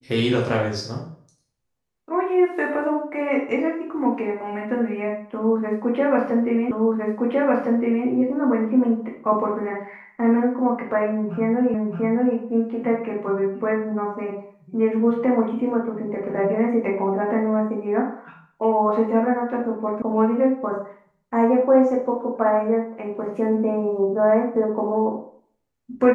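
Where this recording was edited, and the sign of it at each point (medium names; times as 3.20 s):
6.71 s: repeat of the last 1.36 s
11.74 s: repeat of the last 0.62 s
20.02 s: sound stops dead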